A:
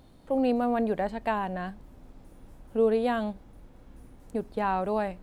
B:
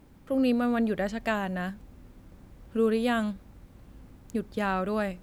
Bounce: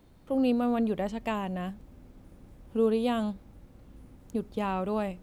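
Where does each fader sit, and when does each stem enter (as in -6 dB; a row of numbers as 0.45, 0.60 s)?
-6.5, -5.0 dB; 0.00, 0.00 s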